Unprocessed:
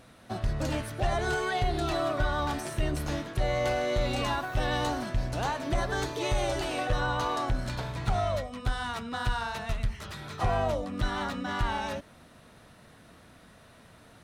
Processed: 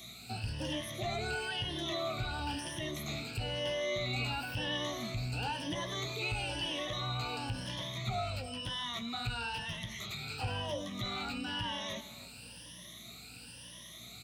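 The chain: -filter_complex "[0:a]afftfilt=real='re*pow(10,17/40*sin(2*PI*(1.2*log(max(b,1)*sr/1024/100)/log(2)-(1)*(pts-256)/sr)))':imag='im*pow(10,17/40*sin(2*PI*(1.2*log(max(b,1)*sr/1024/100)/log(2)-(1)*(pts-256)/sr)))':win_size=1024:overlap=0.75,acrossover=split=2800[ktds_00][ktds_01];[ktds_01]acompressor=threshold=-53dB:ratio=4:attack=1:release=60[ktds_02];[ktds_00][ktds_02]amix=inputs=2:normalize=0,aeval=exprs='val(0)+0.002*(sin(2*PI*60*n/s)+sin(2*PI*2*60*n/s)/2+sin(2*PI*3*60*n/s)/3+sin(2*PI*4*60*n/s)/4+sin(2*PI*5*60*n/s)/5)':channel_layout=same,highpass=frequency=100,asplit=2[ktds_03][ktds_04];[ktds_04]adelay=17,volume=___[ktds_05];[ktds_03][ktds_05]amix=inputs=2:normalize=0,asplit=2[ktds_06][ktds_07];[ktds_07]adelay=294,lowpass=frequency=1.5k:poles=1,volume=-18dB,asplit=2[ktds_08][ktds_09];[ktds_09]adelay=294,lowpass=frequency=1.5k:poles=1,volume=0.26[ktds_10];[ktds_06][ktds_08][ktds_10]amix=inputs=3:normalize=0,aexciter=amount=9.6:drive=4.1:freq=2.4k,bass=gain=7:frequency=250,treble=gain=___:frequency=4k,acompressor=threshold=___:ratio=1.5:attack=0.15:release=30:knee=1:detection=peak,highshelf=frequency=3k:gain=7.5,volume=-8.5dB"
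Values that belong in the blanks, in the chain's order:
-12dB, -12, -33dB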